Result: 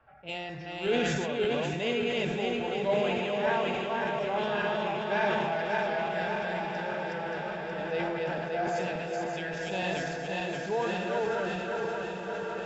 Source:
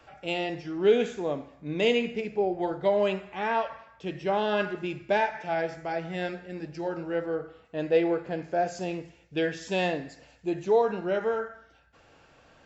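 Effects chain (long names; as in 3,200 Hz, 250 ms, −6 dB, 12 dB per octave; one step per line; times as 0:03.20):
feedback delay that plays each chunk backwards 289 ms, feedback 73%, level −1 dB
low-pass that shuts in the quiet parts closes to 1,500 Hz, open at −24.5 dBFS
thirty-one-band graphic EQ 315 Hz −12 dB, 500 Hz −5 dB, 1,600 Hz +3 dB
on a send: feedback delay with all-pass diffusion 1,298 ms, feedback 55%, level −7 dB
on the sum: level that may fall only so fast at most 20 dB per second
level −6 dB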